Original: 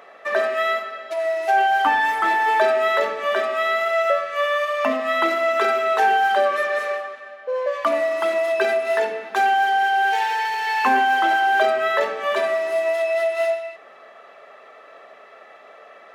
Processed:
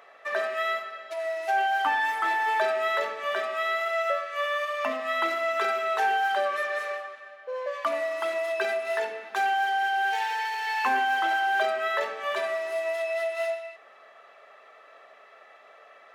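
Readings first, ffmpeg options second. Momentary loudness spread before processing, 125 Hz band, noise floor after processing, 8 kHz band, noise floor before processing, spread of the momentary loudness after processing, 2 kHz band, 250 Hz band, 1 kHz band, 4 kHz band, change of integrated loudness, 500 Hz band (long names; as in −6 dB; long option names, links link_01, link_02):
7 LU, can't be measured, −53 dBFS, −5.0 dB, −46 dBFS, 7 LU, −5.5 dB, −12.0 dB, −7.0 dB, −5.0 dB, −7.0 dB, −8.5 dB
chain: -af "lowshelf=frequency=440:gain=-10,volume=-5dB"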